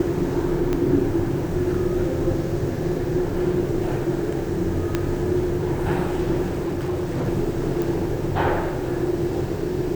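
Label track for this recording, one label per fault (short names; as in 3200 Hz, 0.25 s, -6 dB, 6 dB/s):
0.730000	0.730000	pop -11 dBFS
4.950000	4.950000	pop -8 dBFS
6.490000	7.280000	clipped -21 dBFS
7.820000	7.820000	pop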